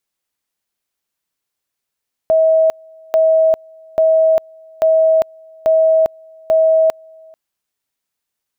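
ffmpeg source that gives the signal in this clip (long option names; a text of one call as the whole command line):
ffmpeg -f lavfi -i "aevalsrc='pow(10,(-8.5-29.5*gte(mod(t,0.84),0.4))/20)*sin(2*PI*642*t)':duration=5.04:sample_rate=44100" out.wav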